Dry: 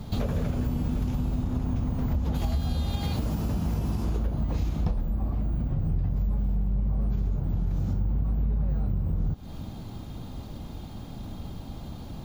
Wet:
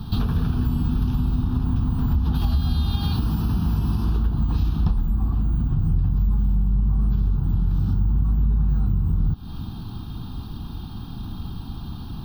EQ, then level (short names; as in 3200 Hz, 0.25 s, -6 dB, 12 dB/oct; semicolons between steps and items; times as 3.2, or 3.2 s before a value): fixed phaser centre 2100 Hz, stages 6; +6.5 dB